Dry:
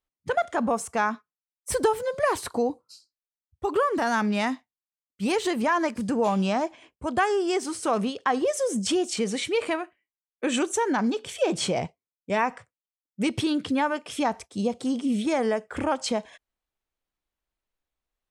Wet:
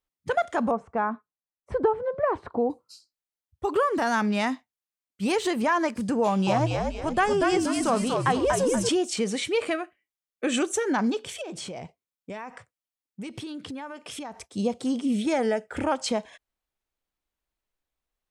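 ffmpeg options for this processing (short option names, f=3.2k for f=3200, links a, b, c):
-filter_complex "[0:a]asettb=1/sr,asplit=3[a][b][c];[a]atrim=end=0.714[d];[b]atrim=start=0.71:end=2.7,asetpts=PTS-STARTPTS,afade=t=in:d=0.004:c=qsin,afade=t=out:st=1.986:d=0.004:c=qsin,lowpass=1.2k[e];[c]atrim=start=2.696[f];[d][e]acrossfade=d=0.004:c1=hsin:c2=qsin[g];[g][f]acrossfade=d=0.004:c1=qsin:c2=hsin,asettb=1/sr,asplit=3[h][i][j];[h]atrim=end=6.234[k];[i]atrim=start=6.23:end=8.89,asetpts=PTS-STARTPTS,afade=t=in:d=0.004:c=qsin,afade=t=out:st=2.656:d=0.004:c=qsin,asplit=6[l][m][n][o][p][q];[m]adelay=238,afreqshift=-71,volume=-3dB[r];[n]adelay=476,afreqshift=-142,volume=-10.7dB[s];[o]adelay=714,afreqshift=-213,volume=-18.5dB[t];[p]adelay=952,afreqshift=-284,volume=-26.2dB[u];[q]adelay=1190,afreqshift=-355,volume=-34dB[v];[l][r][s][t][u][v]amix=inputs=6:normalize=0,atrim=end_sample=117306[w];[j]atrim=start=8.886[x];[k][w]acrossfade=d=0.004:c1=hsin:c2=qsin[y];[y][x]acrossfade=d=0.004:c1=qsin:c2=hsin,asettb=1/sr,asplit=3[z][aa][ab];[z]atrim=end=9.654[ac];[aa]atrim=start=9.65:end=10.89,asetpts=PTS-STARTPTS,afade=t=in:d=0.004:c=qsin,afade=t=out:st=1.236:d=0.004:c=qsin,asuperstop=centerf=950:order=4:qfactor=6.6[ad];[ab]atrim=start=10.886[ae];[ac][ad]acrossfade=d=0.004:c1=hsin:c2=qsin[af];[af][ae]acrossfade=d=0.004:c1=qsin:c2=hsin,asettb=1/sr,asplit=3[ag][ah][ai];[ag]atrim=end=11.414[aj];[ah]atrim=start=11.41:end=14.48,asetpts=PTS-STARTPTS,afade=t=in:d=0.004:c=qsin,afade=t=out:st=3.066:d=0.004:c=qsin,acompressor=threshold=-34dB:ratio=6:attack=3.2:release=140:knee=1:detection=peak[ak];[ai]atrim=start=14.476[al];[aj][ak]acrossfade=d=0.004:c1=hsin:c2=qsin[am];[am][al]acrossfade=d=0.004:c1=qsin:c2=hsin,asettb=1/sr,asplit=3[an][ao][ap];[an]atrim=end=15.204[aq];[ao]atrim=start=15.2:end=15.85,asetpts=PTS-STARTPTS,afade=t=in:d=0.004:c=qsin,afade=t=out:st=0.646:d=0.004:c=qsin,asuperstop=centerf=1100:order=4:qfactor=5.9[ar];[ap]atrim=start=15.846[as];[aq][ar]acrossfade=d=0.004:c1=hsin:c2=qsin[at];[at][as]acrossfade=d=0.004:c1=qsin:c2=hsin"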